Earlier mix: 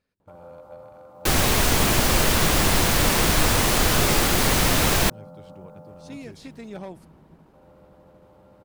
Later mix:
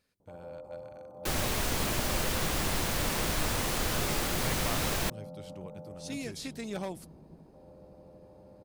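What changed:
speech: add high shelf 3800 Hz +12 dB; first sound: add Chebyshev low-pass 620 Hz, order 2; second sound -11.0 dB

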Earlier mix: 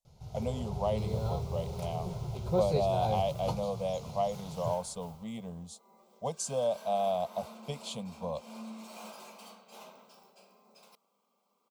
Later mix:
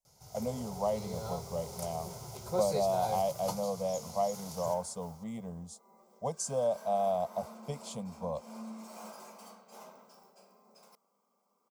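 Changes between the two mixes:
first sound: add tilt +3.5 dB/oct; master: add band shelf 3200 Hz -9 dB 1 oct

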